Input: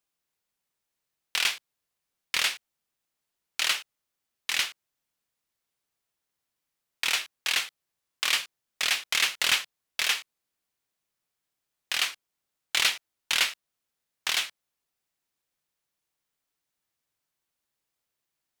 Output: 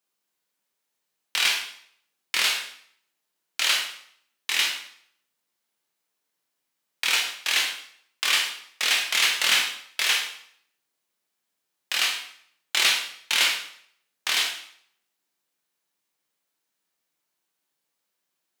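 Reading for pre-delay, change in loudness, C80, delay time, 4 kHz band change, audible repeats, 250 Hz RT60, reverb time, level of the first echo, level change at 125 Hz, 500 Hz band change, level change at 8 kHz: 6 ms, +3.5 dB, 9.0 dB, no echo audible, +4.5 dB, no echo audible, 0.65 s, 0.65 s, no echo audible, can't be measured, +4.0 dB, +4.0 dB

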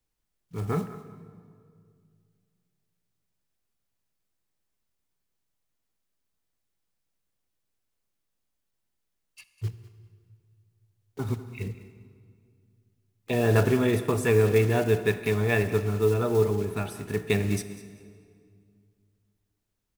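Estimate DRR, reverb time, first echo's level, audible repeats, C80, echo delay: 10.5 dB, 2.2 s, −16.5 dB, 2, 11.5 dB, 199 ms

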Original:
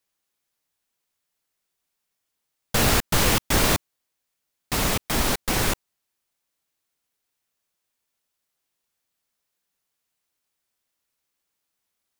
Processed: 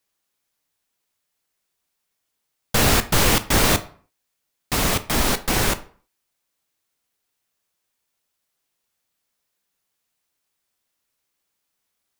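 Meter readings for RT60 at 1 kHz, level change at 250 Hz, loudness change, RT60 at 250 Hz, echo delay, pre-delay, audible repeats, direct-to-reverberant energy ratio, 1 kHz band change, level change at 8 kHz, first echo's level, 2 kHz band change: 0.45 s, +2.5 dB, +2.5 dB, 0.45 s, no echo audible, 14 ms, no echo audible, 11.5 dB, +3.0 dB, +2.5 dB, no echo audible, +3.0 dB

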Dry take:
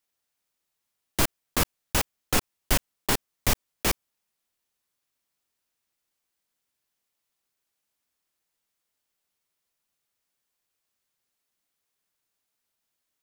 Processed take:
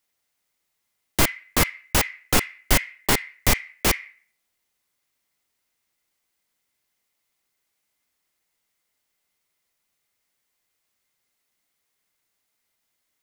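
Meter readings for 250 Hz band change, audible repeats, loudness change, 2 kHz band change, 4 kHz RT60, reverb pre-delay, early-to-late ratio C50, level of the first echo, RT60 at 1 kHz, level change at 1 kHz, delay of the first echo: +4.5 dB, no echo audible, +5.0 dB, +7.0 dB, 0.40 s, 4 ms, 10.0 dB, no echo audible, 0.45 s, +4.5 dB, no echo audible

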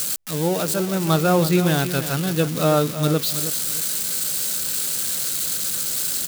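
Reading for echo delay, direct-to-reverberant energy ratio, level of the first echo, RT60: 320 ms, no reverb audible, −11.5 dB, no reverb audible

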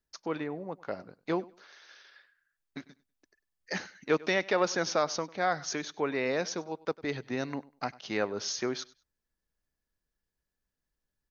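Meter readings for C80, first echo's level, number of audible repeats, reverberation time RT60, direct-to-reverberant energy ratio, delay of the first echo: no reverb audible, −21.5 dB, 2, no reverb audible, no reverb audible, 98 ms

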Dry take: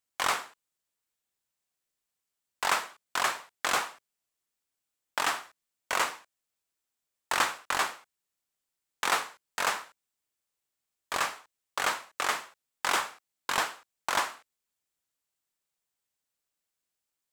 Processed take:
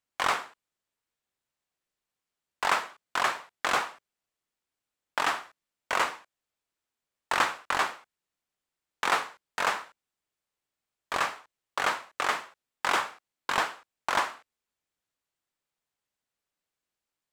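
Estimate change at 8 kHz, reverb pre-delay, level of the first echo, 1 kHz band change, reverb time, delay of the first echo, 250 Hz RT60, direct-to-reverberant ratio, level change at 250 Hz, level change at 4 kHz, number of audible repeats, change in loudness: −4.5 dB, no reverb audible, no echo audible, +2.0 dB, no reverb audible, no echo audible, no reverb audible, no reverb audible, +2.5 dB, −1.0 dB, no echo audible, +1.0 dB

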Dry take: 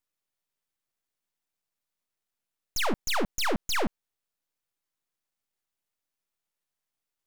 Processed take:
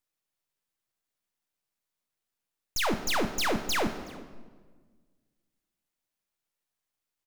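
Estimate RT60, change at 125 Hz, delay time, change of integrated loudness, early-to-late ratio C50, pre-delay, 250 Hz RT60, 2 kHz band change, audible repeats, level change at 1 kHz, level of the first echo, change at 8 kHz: 1.5 s, +1.0 dB, 373 ms, +0.5 dB, 10.0 dB, 3 ms, 1.9 s, +0.5 dB, 1, +0.5 dB, −22.5 dB, +0.5 dB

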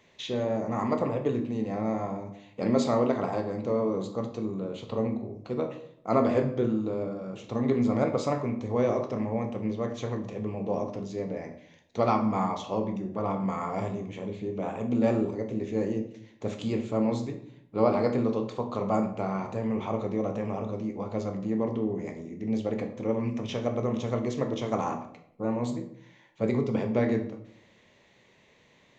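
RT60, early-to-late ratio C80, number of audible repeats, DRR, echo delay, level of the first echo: 0.70 s, 13.0 dB, no echo audible, 5.0 dB, no echo audible, no echo audible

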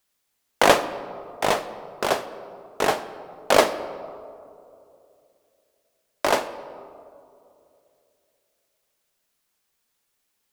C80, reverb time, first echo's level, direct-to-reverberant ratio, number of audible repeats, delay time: 14.0 dB, 2.7 s, no echo audible, 11.0 dB, no echo audible, no echo audible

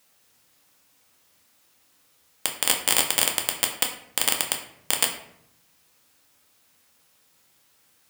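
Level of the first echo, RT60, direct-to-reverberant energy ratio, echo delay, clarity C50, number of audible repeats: no echo audible, 0.75 s, 1.5 dB, no echo audible, 7.5 dB, no echo audible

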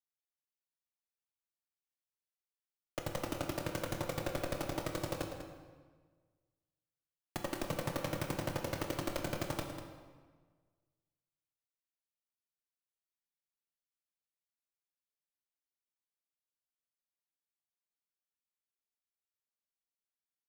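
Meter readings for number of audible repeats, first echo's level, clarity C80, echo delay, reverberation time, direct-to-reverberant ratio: 1, −11.0 dB, 6.0 dB, 196 ms, 1.5 s, 2.0 dB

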